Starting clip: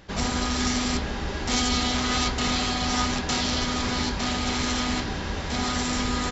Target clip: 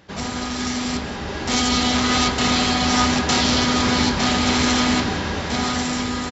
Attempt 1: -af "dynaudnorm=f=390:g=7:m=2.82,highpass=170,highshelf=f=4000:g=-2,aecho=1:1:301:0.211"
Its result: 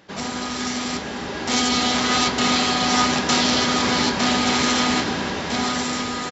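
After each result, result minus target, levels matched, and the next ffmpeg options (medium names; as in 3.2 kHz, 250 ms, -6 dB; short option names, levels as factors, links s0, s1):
echo 115 ms late; 125 Hz band -5.5 dB
-af "dynaudnorm=f=390:g=7:m=2.82,highpass=170,highshelf=f=4000:g=-2,aecho=1:1:186:0.211"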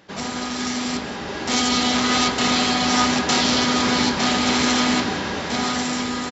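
125 Hz band -5.5 dB
-af "dynaudnorm=f=390:g=7:m=2.82,highpass=81,highshelf=f=4000:g=-2,aecho=1:1:186:0.211"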